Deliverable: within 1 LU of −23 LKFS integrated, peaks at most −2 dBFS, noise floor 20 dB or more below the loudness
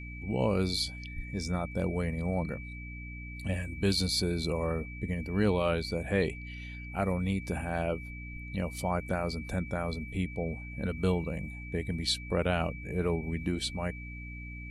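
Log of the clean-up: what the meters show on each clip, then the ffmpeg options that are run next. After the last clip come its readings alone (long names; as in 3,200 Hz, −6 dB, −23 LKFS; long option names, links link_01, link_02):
mains hum 60 Hz; hum harmonics up to 300 Hz; level of the hum −41 dBFS; interfering tone 2,300 Hz; level of the tone −45 dBFS; integrated loudness −32.5 LKFS; sample peak −16.0 dBFS; target loudness −23.0 LKFS
→ -af "bandreject=frequency=60:width_type=h:width=4,bandreject=frequency=120:width_type=h:width=4,bandreject=frequency=180:width_type=h:width=4,bandreject=frequency=240:width_type=h:width=4,bandreject=frequency=300:width_type=h:width=4"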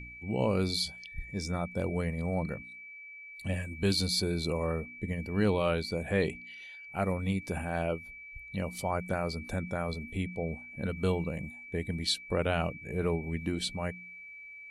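mains hum none found; interfering tone 2,300 Hz; level of the tone −45 dBFS
→ -af "bandreject=frequency=2300:width=30"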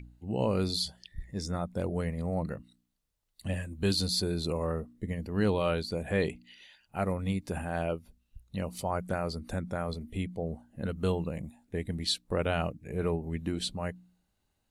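interfering tone none found; integrated loudness −33.0 LKFS; sample peak −16.5 dBFS; target loudness −23.0 LKFS
→ -af "volume=10dB"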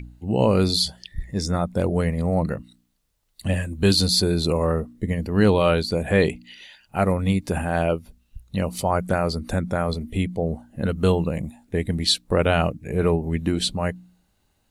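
integrated loudness −23.0 LKFS; sample peak −6.5 dBFS; background noise floor −68 dBFS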